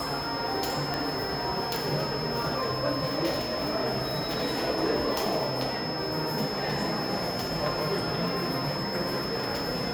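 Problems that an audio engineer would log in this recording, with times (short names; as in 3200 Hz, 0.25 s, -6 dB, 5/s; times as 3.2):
tone 5200 Hz -35 dBFS
0.94 pop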